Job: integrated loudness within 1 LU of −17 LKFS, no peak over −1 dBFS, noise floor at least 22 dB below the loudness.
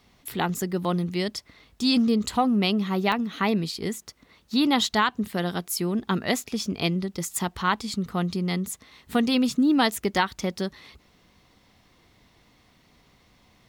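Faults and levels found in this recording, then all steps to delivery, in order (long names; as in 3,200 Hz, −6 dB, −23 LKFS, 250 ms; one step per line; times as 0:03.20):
number of dropouts 2; longest dropout 1.8 ms; integrated loudness −25.5 LKFS; sample peak −10.0 dBFS; target loudness −17.0 LKFS
→ repair the gap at 0:03.12/0:10.17, 1.8 ms
level +8.5 dB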